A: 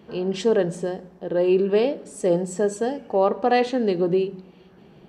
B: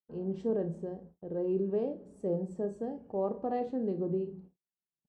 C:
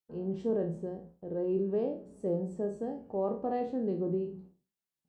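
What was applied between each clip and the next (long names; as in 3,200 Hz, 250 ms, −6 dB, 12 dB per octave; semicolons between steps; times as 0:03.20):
noise gate −42 dBFS, range −50 dB; drawn EQ curve 110 Hz 0 dB, 890 Hz −11 dB, 2,500 Hz −25 dB; on a send: ambience of single reflections 31 ms −11 dB, 54 ms −15 dB; on the sum: level −5.5 dB
peak hold with a decay on every bin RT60 0.35 s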